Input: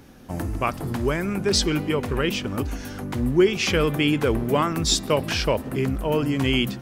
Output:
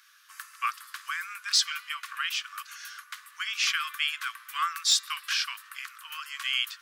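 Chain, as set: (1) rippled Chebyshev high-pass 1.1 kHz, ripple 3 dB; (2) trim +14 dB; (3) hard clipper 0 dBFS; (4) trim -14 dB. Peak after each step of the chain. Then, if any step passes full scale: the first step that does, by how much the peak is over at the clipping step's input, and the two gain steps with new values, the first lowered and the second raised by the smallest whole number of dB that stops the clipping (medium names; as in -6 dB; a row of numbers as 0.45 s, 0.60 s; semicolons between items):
-9.5 dBFS, +4.5 dBFS, 0.0 dBFS, -14.0 dBFS; step 2, 4.5 dB; step 2 +9 dB, step 4 -9 dB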